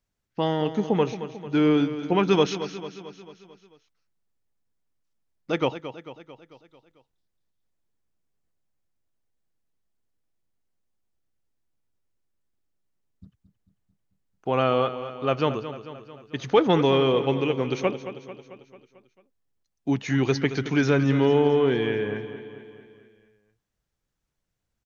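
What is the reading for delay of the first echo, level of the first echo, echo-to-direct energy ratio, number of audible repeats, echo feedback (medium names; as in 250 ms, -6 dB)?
222 ms, -12.0 dB, -10.5 dB, 5, 57%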